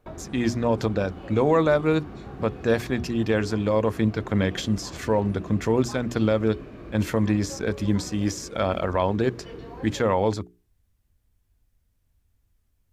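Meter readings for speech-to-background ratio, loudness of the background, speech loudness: 16.0 dB, -41.0 LUFS, -25.0 LUFS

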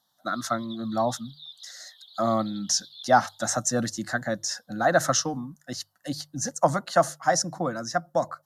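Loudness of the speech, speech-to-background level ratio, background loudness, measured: -26.5 LUFS, 19.5 dB, -46.0 LUFS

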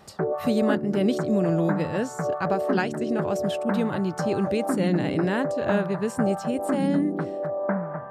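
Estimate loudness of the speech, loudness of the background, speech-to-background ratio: -27.0 LUFS, -28.5 LUFS, 1.5 dB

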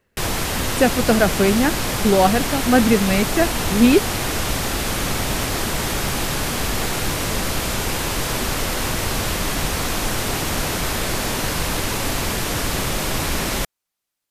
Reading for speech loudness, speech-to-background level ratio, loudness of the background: -18.5 LUFS, 4.0 dB, -22.5 LUFS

